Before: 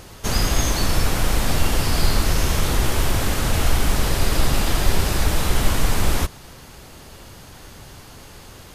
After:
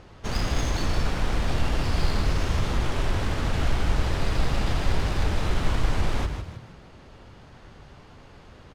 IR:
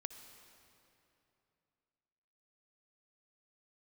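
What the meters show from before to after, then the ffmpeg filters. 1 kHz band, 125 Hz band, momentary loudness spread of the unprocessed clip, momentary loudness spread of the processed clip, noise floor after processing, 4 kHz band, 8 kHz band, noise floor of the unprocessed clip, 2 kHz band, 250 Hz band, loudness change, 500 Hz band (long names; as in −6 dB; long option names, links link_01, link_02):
−5.5 dB, −4.0 dB, 21 LU, 3 LU, −49 dBFS, −8.5 dB, −14.5 dB, −43 dBFS, −6.0 dB, −5.0 dB, −6.0 dB, −5.0 dB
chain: -filter_complex "[0:a]adynamicsmooth=sensitivity=2:basefreq=3300,asplit=2[link_01][link_02];[link_02]asplit=4[link_03][link_04][link_05][link_06];[link_03]adelay=156,afreqshift=35,volume=-8dB[link_07];[link_04]adelay=312,afreqshift=70,volume=-16.4dB[link_08];[link_05]adelay=468,afreqshift=105,volume=-24.8dB[link_09];[link_06]adelay=624,afreqshift=140,volume=-33.2dB[link_10];[link_07][link_08][link_09][link_10]amix=inputs=4:normalize=0[link_11];[link_01][link_11]amix=inputs=2:normalize=0,volume=-6dB"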